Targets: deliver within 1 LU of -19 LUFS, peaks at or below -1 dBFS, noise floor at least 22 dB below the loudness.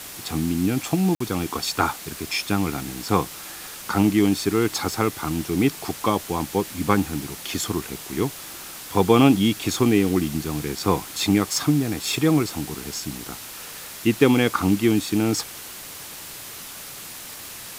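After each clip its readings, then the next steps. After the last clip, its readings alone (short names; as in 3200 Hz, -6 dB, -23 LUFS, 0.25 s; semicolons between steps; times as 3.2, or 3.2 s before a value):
dropouts 1; longest dropout 54 ms; noise floor -38 dBFS; noise floor target -45 dBFS; loudness -22.5 LUFS; peak -1.5 dBFS; loudness target -19.0 LUFS
-> interpolate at 1.15, 54 ms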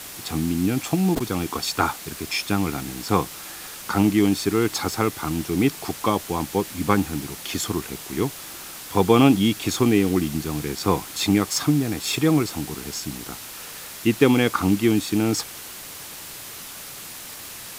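dropouts 0; noise floor -38 dBFS; noise floor target -45 dBFS
-> noise print and reduce 7 dB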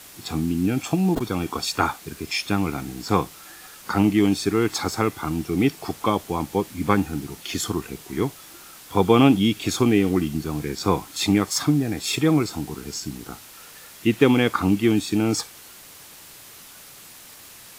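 noise floor -45 dBFS; loudness -23.0 LUFS; peak -1.5 dBFS; loudness target -19.0 LUFS
-> gain +4 dB; limiter -1 dBFS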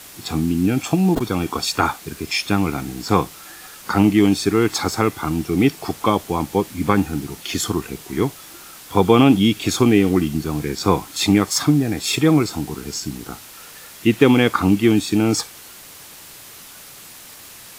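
loudness -19.0 LUFS; peak -1.0 dBFS; noise floor -41 dBFS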